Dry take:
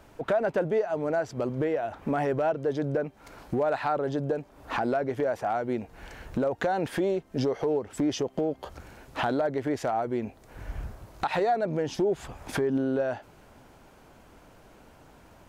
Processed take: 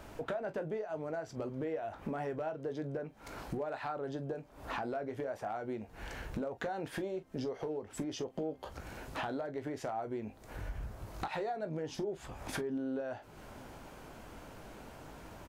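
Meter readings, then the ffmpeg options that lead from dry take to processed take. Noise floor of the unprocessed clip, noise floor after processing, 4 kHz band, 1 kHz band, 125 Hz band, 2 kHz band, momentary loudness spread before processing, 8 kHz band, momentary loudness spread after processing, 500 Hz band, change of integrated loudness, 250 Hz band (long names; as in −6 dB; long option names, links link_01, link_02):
−55 dBFS, −57 dBFS, −7.5 dB, −10.5 dB, −9.0 dB, −9.0 dB, 13 LU, −6.0 dB, 13 LU, −11.0 dB, −11.0 dB, −10.0 dB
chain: -af "acompressor=threshold=-44dB:ratio=3,aecho=1:1:19|42:0.316|0.168,volume=3dB"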